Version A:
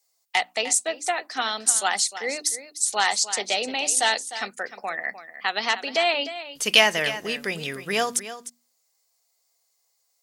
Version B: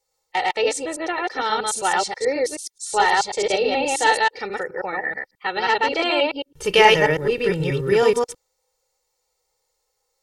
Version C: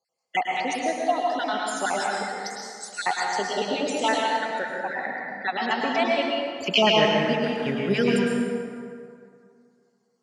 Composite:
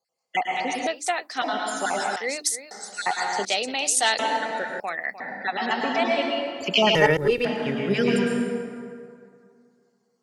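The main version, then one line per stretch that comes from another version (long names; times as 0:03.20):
C
0:00.87–0:01.42: punch in from A
0:02.16–0:02.71: punch in from A
0:03.45–0:04.19: punch in from A
0:04.80–0:05.20: punch in from A
0:06.95–0:07.45: punch in from B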